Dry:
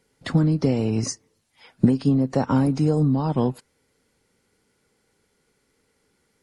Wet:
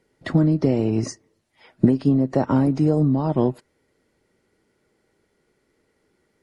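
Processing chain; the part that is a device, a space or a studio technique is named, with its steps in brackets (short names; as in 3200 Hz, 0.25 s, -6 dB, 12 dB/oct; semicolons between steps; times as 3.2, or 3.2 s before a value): inside a helmet (high shelf 3800 Hz -8 dB; small resonant body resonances 350/620/1900 Hz, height 8 dB)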